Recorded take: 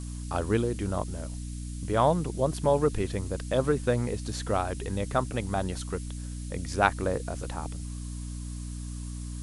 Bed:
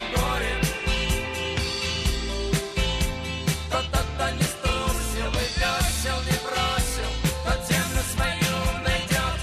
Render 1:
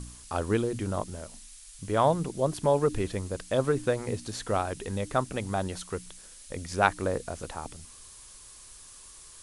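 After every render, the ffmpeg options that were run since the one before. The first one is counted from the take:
-af "bandreject=f=60:t=h:w=4,bandreject=f=120:t=h:w=4,bandreject=f=180:t=h:w=4,bandreject=f=240:t=h:w=4,bandreject=f=300:t=h:w=4"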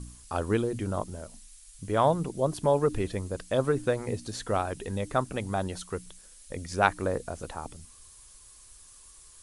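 -af "afftdn=nr=6:nf=-50"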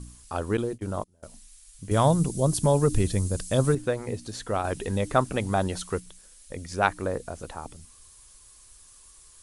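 -filter_complex "[0:a]asettb=1/sr,asplit=3[s0][s1][s2];[s0]atrim=end=0.574[s3];[s1]atrim=start=0.57:end=1.23,asetpts=PTS-STARTPTS,afade=t=in:d=0.004:c=qsin,afade=t=out:st=0.656:d=0.004:c=qsin,agate=range=0.0562:threshold=0.0224:ratio=16:release=100:detection=peak[s4];[s2]atrim=start=1.226[s5];[s3][s4]acrossfade=d=0.004:c1=hsin:c2=qsin[s6];[s6][s5]acrossfade=d=0.004:c1=qsin:c2=hsin,asettb=1/sr,asplit=3[s7][s8][s9];[s7]atrim=end=1.914[s10];[s8]atrim=start=1.91:end=3.75,asetpts=PTS-STARTPTS,afade=t=in:d=0.004:c=qsin,afade=t=out:st=1.836:d=0.004:c=qsin,bass=f=250:g=10,treble=f=4000:g=13[s11];[s9]atrim=start=3.746[s12];[s10][s11]acrossfade=d=0.004:c1=hsin:c2=qsin[s13];[s13][s12]acrossfade=d=0.004:c1=qsin:c2=hsin,asettb=1/sr,asplit=3[s14][s15][s16];[s14]atrim=end=4.644[s17];[s15]atrim=start=4.64:end=6,asetpts=PTS-STARTPTS,afade=t=in:d=0.004:c=qsin,afade=t=out:st=1.356:d=0.004:c=qsin,acontrast=25[s18];[s16]atrim=start=5.996[s19];[s17][s18]acrossfade=d=0.004:c1=hsin:c2=qsin[s20];[s20][s19]acrossfade=d=0.004:c1=qsin:c2=hsin"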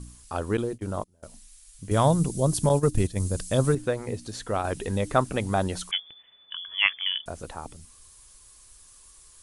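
-filter_complex "[0:a]asettb=1/sr,asplit=3[s0][s1][s2];[s0]atrim=end=2.694[s3];[s1]atrim=start=2.69:end=3.2,asetpts=PTS-STARTPTS,afade=t=in:d=0.004:c=qsin,afade=t=out:st=0.506:d=0.004:c=qsin,agate=range=0.316:threshold=0.0631:ratio=16:release=100:detection=peak[s4];[s2]atrim=start=3.196[s5];[s3][s4]acrossfade=d=0.004:c1=hsin:c2=qsin[s6];[s6][s5]acrossfade=d=0.004:c1=qsin:c2=hsin,asettb=1/sr,asplit=3[s7][s8][s9];[s7]atrim=end=5.914[s10];[s8]atrim=start=5.91:end=7.26,asetpts=PTS-STARTPTS,afade=t=in:d=0.004:c=qsin,afade=t=out:st=1.346:d=0.004:c=qsin,lowpass=f=3000:t=q:w=0.5098,lowpass=f=3000:t=q:w=0.6013,lowpass=f=3000:t=q:w=0.9,lowpass=f=3000:t=q:w=2.563,afreqshift=-3500[s11];[s9]atrim=start=7.256[s12];[s10][s11]acrossfade=d=0.004:c1=hsin:c2=qsin[s13];[s13][s12]acrossfade=d=0.004:c1=qsin:c2=hsin"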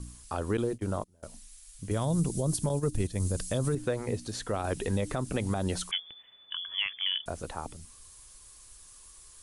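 -filter_complex "[0:a]acrossover=split=480|3000[s0][s1][s2];[s1]acompressor=threshold=0.0398:ratio=6[s3];[s0][s3][s2]amix=inputs=3:normalize=0,alimiter=limit=0.112:level=0:latency=1:release=93"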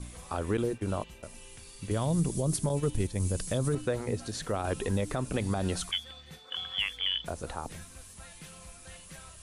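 -filter_complex "[1:a]volume=0.0501[s0];[0:a][s0]amix=inputs=2:normalize=0"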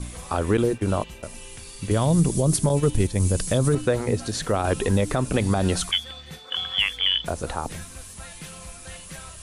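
-af "volume=2.66"

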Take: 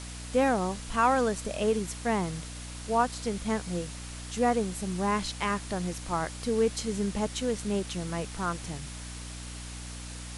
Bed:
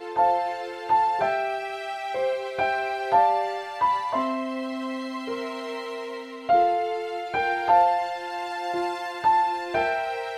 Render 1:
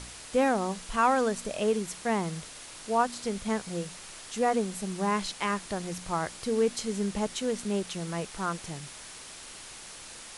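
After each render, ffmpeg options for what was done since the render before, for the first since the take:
-af "bandreject=f=60:t=h:w=4,bandreject=f=120:t=h:w=4,bandreject=f=180:t=h:w=4,bandreject=f=240:t=h:w=4,bandreject=f=300:t=h:w=4"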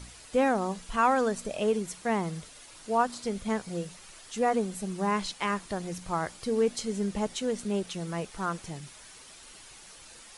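-af "afftdn=nr=8:nf=-46"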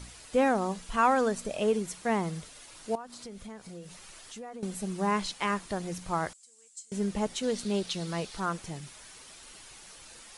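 -filter_complex "[0:a]asettb=1/sr,asplit=3[s0][s1][s2];[s0]atrim=end=2.954[s3];[s1]atrim=start=2.95:end=4.63,asetpts=PTS-STARTPTS,afade=t=in:d=0.004:c=qsin,afade=t=out:st=1.676:d=0.004:c=qsin,acompressor=threshold=0.00794:ratio=4:attack=3.2:release=140:knee=1:detection=peak[s4];[s2]atrim=start=4.626[s5];[s3][s4]acrossfade=d=0.004:c1=hsin:c2=qsin[s6];[s6][s5]acrossfade=d=0.004:c1=qsin:c2=hsin,asettb=1/sr,asplit=3[s7][s8][s9];[s7]atrim=end=6.334[s10];[s8]atrim=start=6.33:end=6.92,asetpts=PTS-STARTPTS,afade=t=in:d=0.004:c=qsin,afade=t=out:st=0.586:d=0.004:c=qsin,bandpass=f=7600:t=q:w=7[s11];[s9]atrim=start=6.916[s12];[s10][s11]acrossfade=d=0.004:c1=hsin:c2=qsin[s13];[s13][s12]acrossfade=d=0.004:c1=qsin:c2=hsin,asettb=1/sr,asplit=3[s14][s15][s16];[s14]atrim=end=7.434[s17];[s15]atrim=start=7.43:end=8.4,asetpts=PTS-STARTPTS,afade=t=in:d=0.004:c=qsin,afade=t=out:st=0.966:d=0.004:c=qsin,equalizer=f=4200:w=1.6:g=9[s18];[s16]atrim=start=8.396[s19];[s17][s18]acrossfade=d=0.004:c1=hsin:c2=qsin[s20];[s20][s19]acrossfade=d=0.004:c1=qsin:c2=hsin"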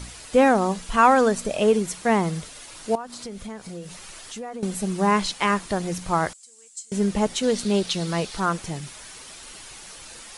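-af "volume=2.51"

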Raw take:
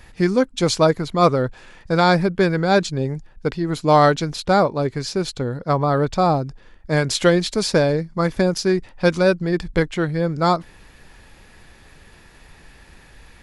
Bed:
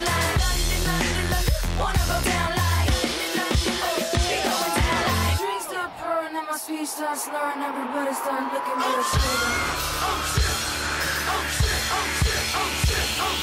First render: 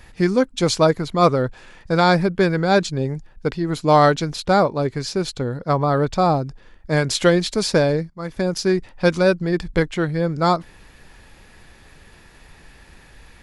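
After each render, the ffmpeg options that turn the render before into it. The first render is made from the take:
-filter_complex "[0:a]asplit=2[s0][s1];[s0]atrim=end=8.1,asetpts=PTS-STARTPTS,afade=t=out:st=8.096:d=0.004:c=hsin:silence=0.1[s2];[s1]atrim=start=8.1,asetpts=PTS-STARTPTS,afade=t=in:d=0.54:silence=0.1[s3];[s2][s3]concat=n=2:v=0:a=1"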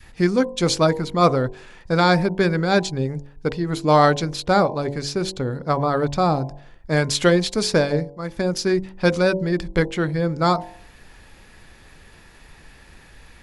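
-af "bandreject=f=47.34:t=h:w=4,bandreject=f=94.68:t=h:w=4,bandreject=f=142.02:t=h:w=4,bandreject=f=189.36:t=h:w=4,bandreject=f=236.7:t=h:w=4,bandreject=f=284.04:t=h:w=4,bandreject=f=331.38:t=h:w=4,bandreject=f=378.72:t=h:w=4,bandreject=f=426.06:t=h:w=4,bandreject=f=473.4:t=h:w=4,bandreject=f=520.74:t=h:w=4,bandreject=f=568.08:t=h:w=4,bandreject=f=615.42:t=h:w=4,bandreject=f=662.76:t=h:w=4,bandreject=f=710.1:t=h:w=4,bandreject=f=757.44:t=h:w=4,bandreject=f=804.78:t=h:w=4,bandreject=f=852.12:t=h:w=4,bandreject=f=899.46:t=h:w=4,bandreject=f=946.8:t=h:w=4,bandreject=f=994.14:t=h:w=4,bandreject=f=1041.48:t=h:w=4,adynamicequalizer=threshold=0.0398:dfrequency=670:dqfactor=1:tfrequency=670:tqfactor=1:attack=5:release=100:ratio=0.375:range=2:mode=cutabove:tftype=bell"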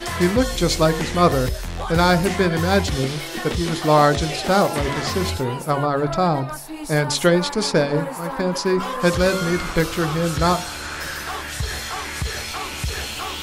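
-filter_complex "[1:a]volume=0.631[s0];[0:a][s0]amix=inputs=2:normalize=0"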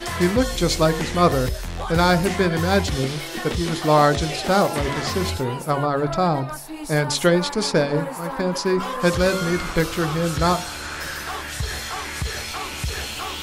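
-af "volume=0.891"

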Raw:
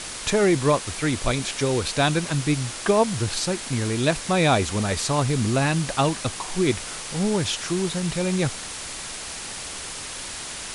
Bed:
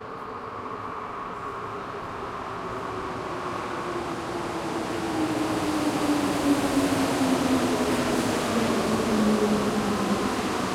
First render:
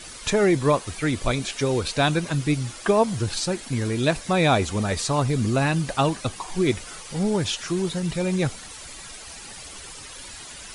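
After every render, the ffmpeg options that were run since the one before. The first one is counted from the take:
-af "afftdn=nr=11:nf=-35"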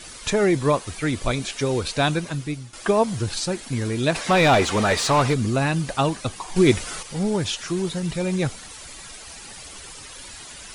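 -filter_complex "[0:a]asplit=3[s0][s1][s2];[s0]afade=t=out:st=4.14:d=0.02[s3];[s1]asplit=2[s4][s5];[s5]highpass=f=720:p=1,volume=10,asoftclip=type=tanh:threshold=0.376[s6];[s4][s6]amix=inputs=2:normalize=0,lowpass=f=2700:p=1,volume=0.501,afade=t=in:st=4.14:d=0.02,afade=t=out:st=5.33:d=0.02[s7];[s2]afade=t=in:st=5.33:d=0.02[s8];[s3][s7][s8]amix=inputs=3:normalize=0,asettb=1/sr,asplit=3[s9][s10][s11];[s9]atrim=end=6.564[s12];[s10]atrim=start=6.56:end=7.03,asetpts=PTS-STARTPTS,afade=t=in:d=0.004:c=qsin,afade=t=out:st=0.466:d=0.004:c=qsin,acontrast=52[s13];[s11]atrim=start=7.026[s14];[s12][s13]acrossfade=d=0.004:c1=hsin:c2=qsin[s15];[s15][s14]acrossfade=d=0.004:c1=qsin:c2=hsin,asplit=2[s16][s17];[s16]atrim=end=2.73,asetpts=PTS-STARTPTS,afade=t=out:st=2.09:d=0.64:silence=0.211349[s18];[s17]atrim=start=2.73,asetpts=PTS-STARTPTS,afade=t=in:d=0.004:c=hsin:silence=0.211349[s19];[s18][s19]concat=n=2:v=0:a=1"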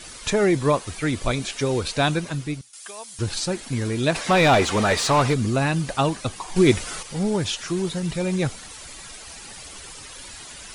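-filter_complex "[0:a]asettb=1/sr,asplit=3[s0][s1][s2];[s0]atrim=end=2.614[s3];[s1]atrim=start=2.61:end=3.19,asetpts=PTS-STARTPTS,afade=t=in:d=0.004:c=qsin,afade=t=out:st=0.576:d=0.004:c=qsin,aderivative[s4];[s2]atrim=start=3.186[s5];[s3][s4]acrossfade=d=0.004:c1=hsin:c2=qsin[s6];[s6][s5]acrossfade=d=0.004:c1=qsin:c2=hsin"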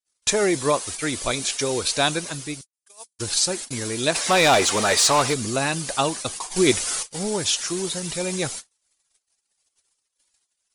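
-af "agate=range=0.00126:threshold=0.02:ratio=16:detection=peak,bass=f=250:g=-9,treble=f=4000:g=10"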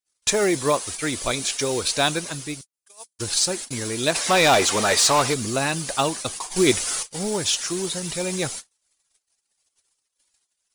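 -af "acrusher=bits=6:mode=log:mix=0:aa=0.000001"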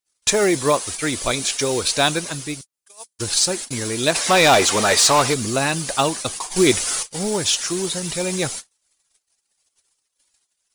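-af "volume=1.41,alimiter=limit=0.794:level=0:latency=1"

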